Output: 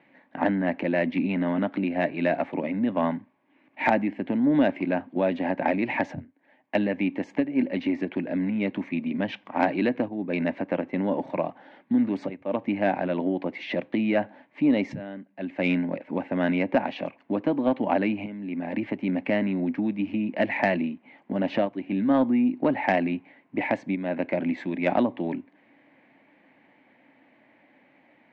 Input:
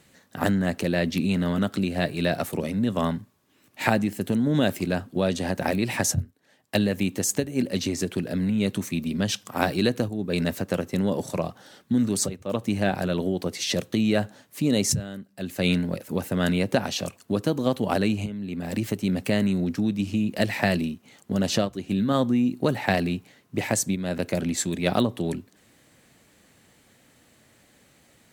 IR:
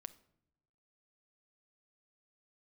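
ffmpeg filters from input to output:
-af "highpass=260,equalizer=f=280:t=q:w=4:g=8,equalizer=f=430:t=q:w=4:g=-7,equalizer=f=610:t=q:w=4:g=3,equalizer=f=890:t=q:w=4:g=6,equalizer=f=1.3k:t=q:w=4:g=-8,equalizer=f=2.2k:t=q:w=4:g=6,lowpass=f=2.4k:w=0.5412,lowpass=f=2.4k:w=1.3066,acontrast=86,volume=-6.5dB"

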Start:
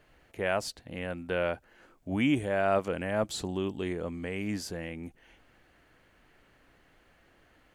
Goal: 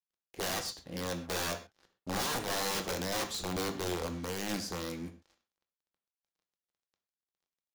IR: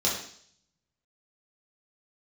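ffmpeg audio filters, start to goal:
-filter_complex "[0:a]acrusher=bits=7:mix=0:aa=0.5,aeval=exprs='(mod(22.4*val(0)+1,2)-1)/22.4':c=same,asplit=2[a][b];[1:a]atrim=start_sample=2205,atrim=end_sample=6174[c];[b][c]afir=irnorm=-1:irlink=0,volume=-14.5dB[d];[a][d]amix=inputs=2:normalize=0,volume=-3.5dB"

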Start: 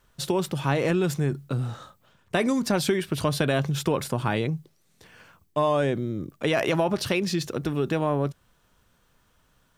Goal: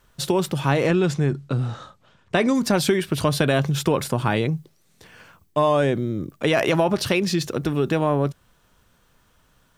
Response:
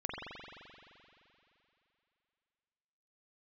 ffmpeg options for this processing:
-filter_complex "[0:a]asettb=1/sr,asplit=3[a][b][c];[a]atrim=end=0.874[d];[b]atrim=start=0.87:end=2.55,asetpts=PTS-STARTPTS,afade=t=in:d=0.004:c=qsin,afade=t=out:st=1.676:d=0.004:c=qsin,lowpass=6.7k[e];[c]atrim=start=2.546[f];[d][e]acrossfade=d=0.004:c1=hsin:c2=qsin[g];[g][f]acrossfade=d=0.004:c1=qsin:c2=hsin,volume=4dB"

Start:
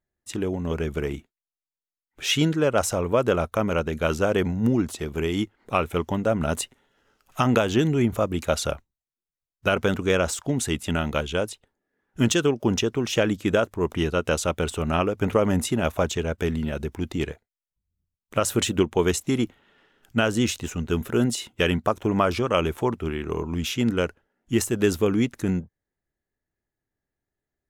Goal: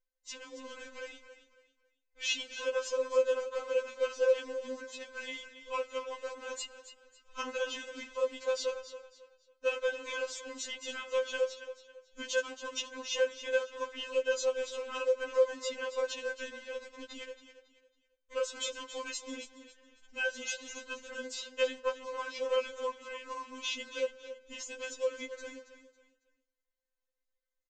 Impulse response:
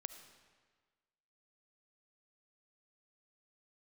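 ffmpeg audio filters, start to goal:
-filter_complex "[0:a]asplit=2[a][b];[1:a]atrim=start_sample=2205[c];[b][c]afir=irnorm=-1:irlink=0,volume=-9dB[d];[a][d]amix=inputs=2:normalize=0,acompressor=threshold=-26dB:ratio=2,bandreject=f=50:t=h:w=6,bandreject=f=100:t=h:w=6,aecho=1:1:2:0.93,aecho=1:1:275|550|825:0.251|0.0754|0.0226,aresample=16000,acrusher=bits=6:mode=log:mix=0:aa=0.000001,aresample=44100,afftfilt=real='re*3.46*eq(mod(b,12),0)':imag='im*3.46*eq(mod(b,12),0)':win_size=2048:overlap=0.75,volume=-6.5dB"

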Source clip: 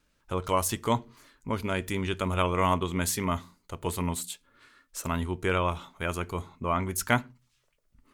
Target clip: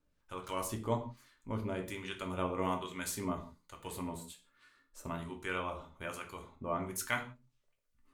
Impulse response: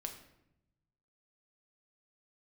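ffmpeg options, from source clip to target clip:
-filter_complex "[0:a]acrossover=split=1000[a][b];[a]aeval=exprs='val(0)*(1-0.7/2+0.7/2*cos(2*PI*1.2*n/s))':c=same[c];[b]aeval=exprs='val(0)*(1-0.7/2-0.7/2*cos(2*PI*1.2*n/s))':c=same[d];[c][d]amix=inputs=2:normalize=0[e];[1:a]atrim=start_sample=2205,afade=t=out:st=0.38:d=0.01,atrim=end_sample=17199,asetrate=79380,aresample=44100[f];[e][f]afir=irnorm=-1:irlink=0,volume=1dB"

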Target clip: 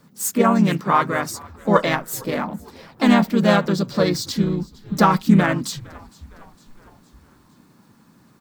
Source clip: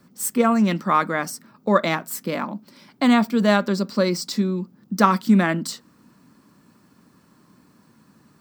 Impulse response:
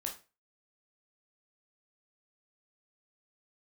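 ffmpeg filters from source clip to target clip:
-filter_complex "[0:a]asplit=5[a][b][c][d][e];[b]adelay=459,afreqshift=-68,volume=-23.5dB[f];[c]adelay=918,afreqshift=-136,volume=-28.4dB[g];[d]adelay=1377,afreqshift=-204,volume=-33.3dB[h];[e]adelay=1836,afreqshift=-272,volume=-38.1dB[i];[a][f][g][h][i]amix=inputs=5:normalize=0,asplit=3[j][k][l];[k]asetrate=37084,aresample=44100,atempo=1.18921,volume=-3dB[m];[l]asetrate=55563,aresample=44100,atempo=0.793701,volume=-16dB[n];[j][m][n]amix=inputs=3:normalize=0"

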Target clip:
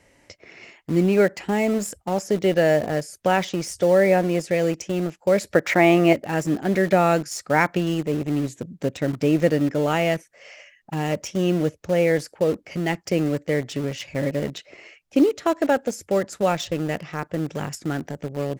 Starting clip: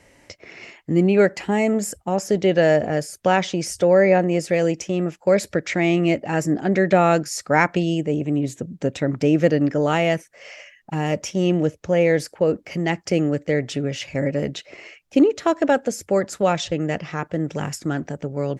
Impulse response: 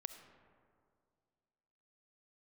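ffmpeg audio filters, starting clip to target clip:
-filter_complex "[0:a]asettb=1/sr,asplit=3[a][b][c];[a]atrim=end=5.544[d];[b]atrim=start=5.54:end=6.13,asetpts=PTS-STARTPTS,afade=t=in:d=0.004:c=qsin,afade=t=out:st=0.586:d=0.004:c=qsin,equalizer=f=940:t=o:w=2.1:g=12.5[e];[c]atrim=start=6.126[f];[d][e]acrossfade=d=0.004:c1=hsin:c2=qsin[g];[g][f]acrossfade=d=0.004:c1=qsin:c2=hsin,asplit=2[h][i];[i]acrusher=bits=3:mix=0:aa=0.000001,volume=-11.5dB[j];[h][j]amix=inputs=2:normalize=0,volume=-4dB"

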